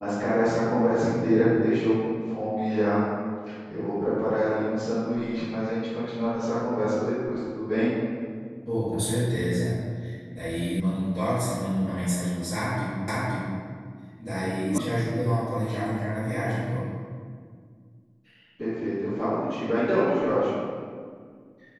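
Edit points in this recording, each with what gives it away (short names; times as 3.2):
10.8 sound cut off
13.08 repeat of the last 0.52 s
14.78 sound cut off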